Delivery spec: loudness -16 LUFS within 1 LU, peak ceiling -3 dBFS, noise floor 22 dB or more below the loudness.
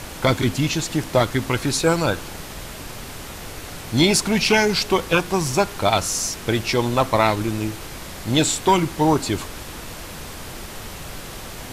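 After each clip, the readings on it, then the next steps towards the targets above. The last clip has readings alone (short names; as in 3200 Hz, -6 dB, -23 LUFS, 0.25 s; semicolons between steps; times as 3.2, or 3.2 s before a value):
noise floor -35 dBFS; noise floor target -42 dBFS; loudness -20.0 LUFS; peak -5.0 dBFS; loudness target -16.0 LUFS
-> noise print and reduce 7 dB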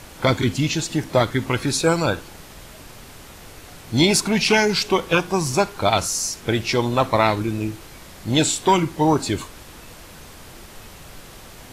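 noise floor -42 dBFS; noise floor target -43 dBFS
-> noise print and reduce 6 dB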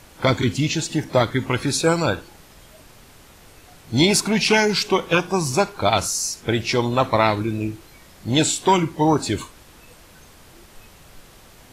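noise floor -48 dBFS; loudness -20.5 LUFS; peak -5.5 dBFS; loudness target -16.0 LUFS
-> gain +4.5 dB; limiter -3 dBFS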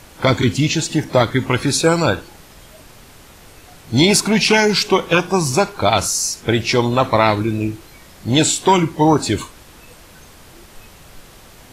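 loudness -16.5 LUFS; peak -3.0 dBFS; noise floor -44 dBFS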